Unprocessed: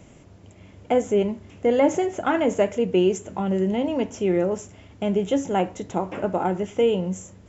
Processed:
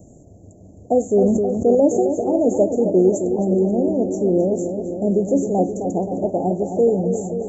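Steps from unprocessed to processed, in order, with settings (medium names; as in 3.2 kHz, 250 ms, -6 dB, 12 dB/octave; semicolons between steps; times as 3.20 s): Chebyshev band-stop 720–6600 Hz, order 4; on a send: filtered feedback delay 264 ms, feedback 74%, low-pass 3.8 kHz, level -8 dB; 1.13–1.75 s: on the sum: decay stretcher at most 22 dB/s; trim +4 dB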